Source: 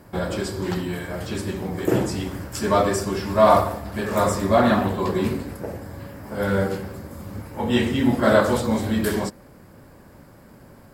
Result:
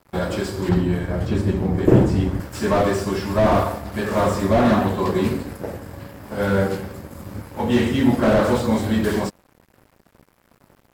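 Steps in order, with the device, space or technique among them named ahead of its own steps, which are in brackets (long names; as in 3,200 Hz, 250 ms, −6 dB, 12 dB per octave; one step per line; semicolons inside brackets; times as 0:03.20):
early transistor amplifier (dead-zone distortion −44.5 dBFS; slew-rate limiting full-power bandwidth 88 Hz)
0:00.69–0:02.40: spectral tilt −2.5 dB per octave
level +3 dB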